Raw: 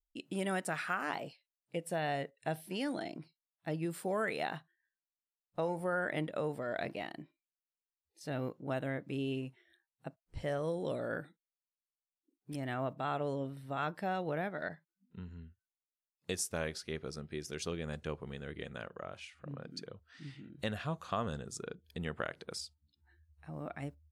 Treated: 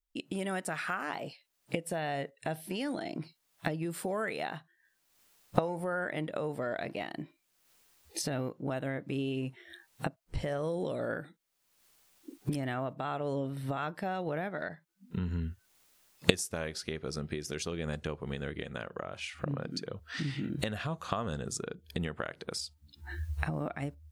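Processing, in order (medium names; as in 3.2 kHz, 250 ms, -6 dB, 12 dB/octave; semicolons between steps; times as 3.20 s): recorder AGC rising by 43 dB/s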